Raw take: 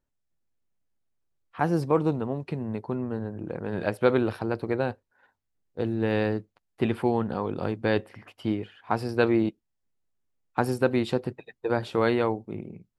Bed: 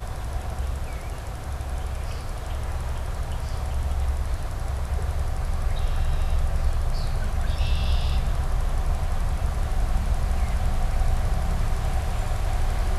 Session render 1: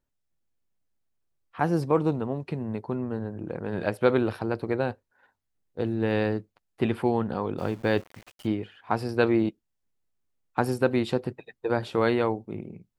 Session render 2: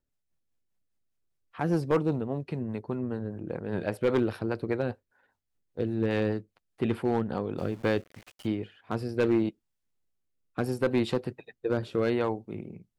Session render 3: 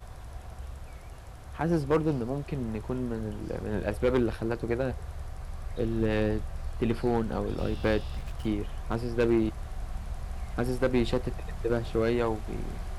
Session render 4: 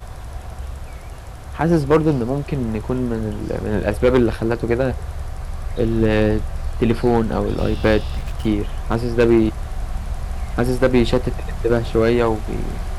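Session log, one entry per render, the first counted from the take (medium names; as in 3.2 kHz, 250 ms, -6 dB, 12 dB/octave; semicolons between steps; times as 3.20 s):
7.58–8.47 s: small samples zeroed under -45 dBFS
rotary cabinet horn 5 Hz, later 0.7 Hz, at 7.39 s; overload inside the chain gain 17.5 dB
add bed -12.5 dB
trim +10.5 dB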